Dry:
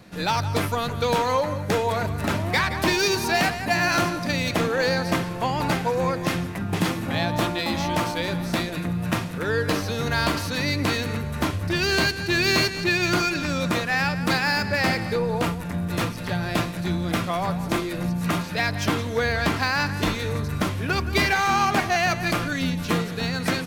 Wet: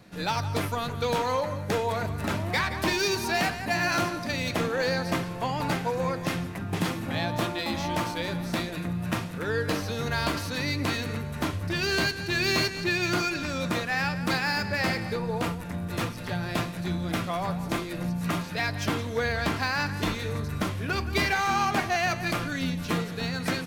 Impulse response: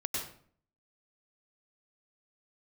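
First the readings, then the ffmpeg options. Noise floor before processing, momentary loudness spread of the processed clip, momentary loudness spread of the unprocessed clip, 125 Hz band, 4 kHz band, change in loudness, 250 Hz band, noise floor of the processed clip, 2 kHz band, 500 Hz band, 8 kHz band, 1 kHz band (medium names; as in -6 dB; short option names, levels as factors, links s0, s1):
-31 dBFS, 6 LU, 6 LU, -4.5 dB, -4.5 dB, -4.5 dB, -4.5 dB, -35 dBFS, -4.5 dB, -4.5 dB, -4.5 dB, -4.5 dB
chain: -af "flanger=delay=7:depth=2.6:regen=-79:speed=0.17:shape=sinusoidal"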